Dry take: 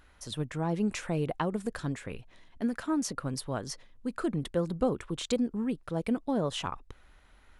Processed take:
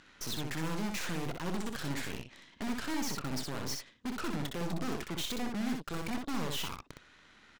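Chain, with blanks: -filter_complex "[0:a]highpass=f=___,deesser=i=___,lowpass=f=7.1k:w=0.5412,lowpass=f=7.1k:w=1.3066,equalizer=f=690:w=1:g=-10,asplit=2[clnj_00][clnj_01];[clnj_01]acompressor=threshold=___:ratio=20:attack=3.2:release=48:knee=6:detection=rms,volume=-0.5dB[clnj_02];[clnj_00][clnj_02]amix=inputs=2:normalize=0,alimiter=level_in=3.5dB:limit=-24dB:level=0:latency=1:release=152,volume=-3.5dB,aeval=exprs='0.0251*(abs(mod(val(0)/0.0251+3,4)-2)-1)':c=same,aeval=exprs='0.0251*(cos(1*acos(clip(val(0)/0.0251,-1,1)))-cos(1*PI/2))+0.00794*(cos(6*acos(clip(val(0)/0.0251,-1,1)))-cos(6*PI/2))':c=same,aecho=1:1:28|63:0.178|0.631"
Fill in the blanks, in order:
180, 0.75, -39dB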